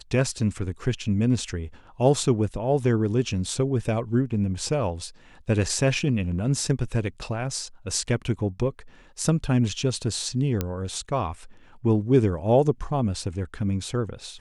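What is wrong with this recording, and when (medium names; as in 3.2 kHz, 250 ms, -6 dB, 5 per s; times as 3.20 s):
10.61 s: pop -11 dBFS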